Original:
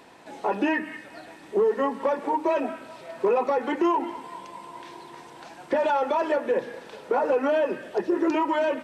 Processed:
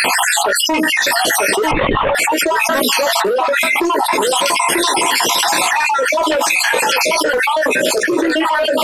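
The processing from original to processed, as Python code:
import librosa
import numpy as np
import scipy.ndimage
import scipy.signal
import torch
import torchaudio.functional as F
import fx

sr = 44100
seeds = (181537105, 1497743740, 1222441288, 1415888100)

y = fx.spec_dropout(x, sr, seeds[0], share_pct=65)
y = fx.tilt_eq(y, sr, slope=4.0)
y = fx.rider(y, sr, range_db=4, speed_s=0.5)
y = fx.fold_sine(y, sr, drive_db=7, ceiling_db=-15.5)
y = fx.doubler(y, sr, ms=16.0, db=-8.5)
y = y + 10.0 ** (-13.0 / 20.0) * np.pad(y, (int(941 * sr / 1000.0), 0))[:len(y)]
y = fx.lpc_vocoder(y, sr, seeds[1], excitation='whisper', order=16, at=(1.71, 2.15))
y = fx.env_flatten(y, sr, amount_pct=100)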